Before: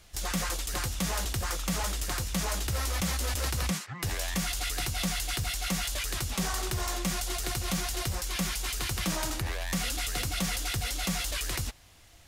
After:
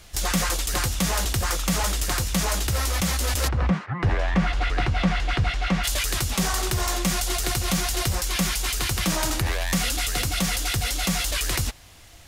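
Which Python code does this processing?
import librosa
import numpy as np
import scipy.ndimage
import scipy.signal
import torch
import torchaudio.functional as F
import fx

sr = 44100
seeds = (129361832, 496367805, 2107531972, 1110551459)

y = fx.lowpass(x, sr, hz=fx.line((3.47, 1400.0), (5.83, 2500.0)), slope=12, at=(3.47, 5.83), fade=0.02)
y = fx.rider(y, sr, range_db=10, speed_s=0.5)
y = y * librosa.db_to_amplitude(7.5)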